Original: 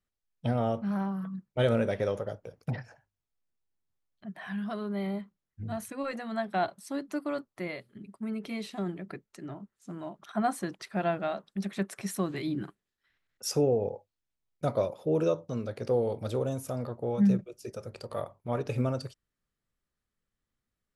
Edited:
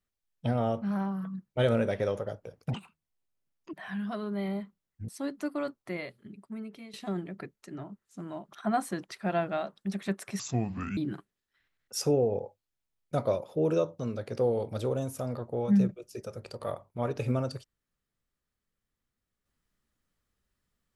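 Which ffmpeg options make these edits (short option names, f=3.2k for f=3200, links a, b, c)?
-filter_complex "[0:a]asplit=7[a][b][c][d][e][f][g];[a]atrim=end=2.744[h];[b]atrim=start=2.74:end=4.32,asetpts=PTS-STARTPTS,asetrate=70119,aresample=44100[i];[c]atrim=start=4.316:end=5.672[j];[d]atrim=start=6.788:end=8.64,asetpts=PTS-STARTPTS,afade=t=out:st=1.132:d=0.72:silence=0.177828[k];[e]atrim=start=8.64:end=12.104,asetpts=PTS-STARTPTS,afade=t=in:d=0.004:c=hsin:silence=0.177828[l];[f]atrim=start=12.1:end=12.47,asetpts=PTS-STARTPTS,asetrate=28224,aresample=44100,atrim=end_sample=25495,asetpts=PTS-STARTPTS[m];[g]atrim=start=12.466[n];[h][i]acrossfade=d=0.004:c1=hsin:c2=hsin[o];[o][j]acrossfade=d=0.004:c1=hsin:c2=hsin[p];[k][l]concat=n=2:v=0:a=1[q];[p][q]acrossfade=d=0.004:c1=hsin:c2=hsin[r];[r][m]acrossfade=d=0.004:c1=hsin:c2=hsin[s];[s][n]acrossfade=d=0.004:c1=hsin:c2=hsin"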